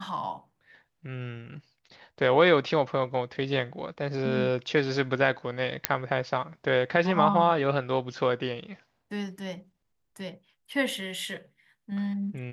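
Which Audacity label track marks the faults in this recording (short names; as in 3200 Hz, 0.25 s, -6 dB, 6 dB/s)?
5.850000	5.850000	pop -3 dBFS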